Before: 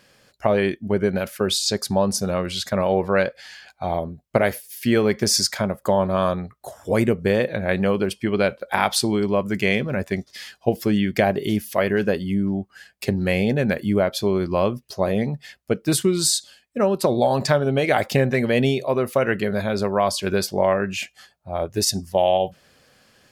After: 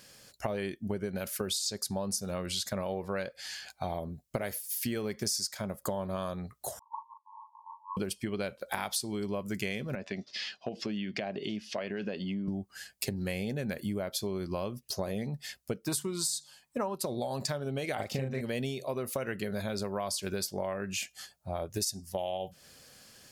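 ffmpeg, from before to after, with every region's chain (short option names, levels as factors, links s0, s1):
-filter_complex "[0:a]asettb=1/sr,asplit=3[s0][s1][s2];[s0]atrim=end=6.794[s3];[s1]atrim=start=6.79:end=7.97,asetpts=PTS-STARTPTS,afade=t=in:d=0.004:c=qsin,afade=t=out:st=1.176:d=0.004:c=qsin,asuperpass=centerf=980:order=12:qfactor=4.3,asplit=2[s4][s5];[s5]adelay=37,volume=0.668[s6];[s4][s6]amix=inputs=2:normalize=0,atrim=end_sample=52038[s7];[s2]atrim=start=7.966[s8];[s3][s7]acrossfade=d=0.004:c1=hsin:c2=qsin[s9];[s9][s8]acrossfade=d=0.004:c1=qsin:c2=hsin,asettb=1/sr,asplit=3[s10][s11][s12];[s10]atrim=end=9.954[s13];[s11]atrim=start=9.95:end=12.48,asetpts=PTS-STARTPTS,afade=t=in:d=0.004:c=qsin,afade=t=out:st=2.526:d=0.004:c=qsin,acompressor=threshold=0.0355:ratio=2.5:attack=3.2:release=140:knee=1:detection=peak,highpass=170,equalizer=f=210:t=q:w=4:g=3,equalizer=f=640:t=q:w=4:g=4,equalizer=f=2700:t=q:w=4:g=6,lowpass=f=4900:w=0.5412,lowpass=f=4900:w=1.3066[s14];[s12]atrim=start=12.476[s15];[s13][s14]acrossfade=d=0.004:c1=hsin:c2=qsin[s16];[s16][s15]acrossfade=d=0.004:c1=qsin:c2=hsin,asettb=1/sr,asplit=3[s17][s18][s19];[s17]atrim=end=15.864[s20];[s18]atrim=start=15.86:end=16.96,asetpts=PTS-STARTPTS,afade=t=in:d=0.004:c=qsin,afade=t=out:st=1.096:d=0.004:c=qsin,equalizer=f=960:w=2:g=15,bandreject=f=73.34:t=h:w=4,bandreject=f=146.68:t=h:w=4,bandreject=f=220.02:t=h:w=4[s21];[s19]atrim=start=16.956[s22];[s20][s21]acrossfade=d=0.004:c1=hsin:c2=qsin[s23];[s23][s22]acrossfade=d=0.004:c1=qsin:c2=hsin,asettb=1/sr,asplit=3[s24][s25][s26];[s24]atrim=end=17.954[s27];[s25]atrim=start=17.95:end=18.41,asetpts=PTS-STARTPTS,afade=t=in:d=0.004:c=qsin,afade=t=out:st=0.456:d=0.004:c=qsin,lowpass=f=2700:p=1,bandreject=f=1700:w=13,asplit=2[s28][s29];[s29]adelay=38,volume=0.75[s30];[s28][s30]amix=inputs=2:normalize=0,atrim=end_sample=20286[s31];[s26]atrim=start=18.406[s32];[s27][s31]acrossfade=d=0.004:c1=hsin:c2=qsin[s33];[s33][s32]acrossfade=d=0.004:c1=qsin:c2=hsin,bass=f=250:g=2,treble=f=4000:g=11,acompressor=threshold=0.0398:ratio=6,volume=0.668"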